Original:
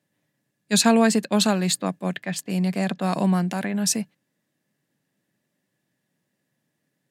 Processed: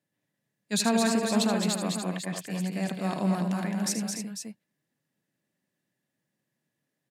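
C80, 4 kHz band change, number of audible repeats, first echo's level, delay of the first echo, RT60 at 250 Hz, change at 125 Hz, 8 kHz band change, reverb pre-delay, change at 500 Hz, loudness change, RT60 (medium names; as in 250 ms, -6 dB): no reverb, -6.0 dB, 4, -10.0 dB, 78 ms, no reverb, -5.5 dB, -6.0 dB, no reverb, -6.0 dB, -6.0 dB, no reverb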